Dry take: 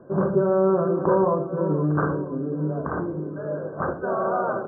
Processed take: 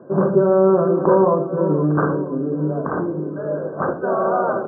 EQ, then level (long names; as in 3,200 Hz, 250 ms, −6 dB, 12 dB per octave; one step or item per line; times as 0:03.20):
high-pass filter 150 Hz 12 dB per octave
low-pass filter 1,600 Hz 6 dB per octave
+6.0 dB